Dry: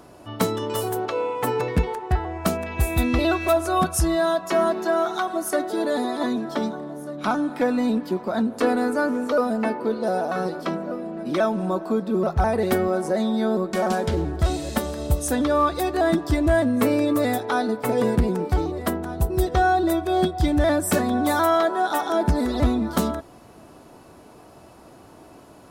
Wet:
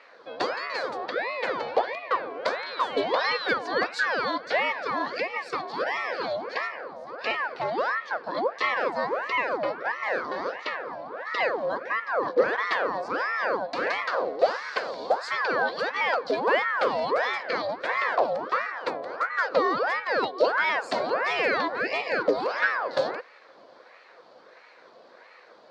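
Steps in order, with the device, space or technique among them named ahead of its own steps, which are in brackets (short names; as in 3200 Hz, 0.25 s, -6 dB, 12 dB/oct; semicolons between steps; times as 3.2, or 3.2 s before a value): voice changer toy (ring modulator with a swept carrier 970 Hz, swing 65%, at 1.5 Hz; speaker cabinet 440–4700 Hz, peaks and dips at 510 Hz +9 dB, 850 Hz -5 dB, 1300 Hz -4 dB, 2000 Hz -3 dB, 2900 Hz -4 dB, 4400 Hz +8 dB)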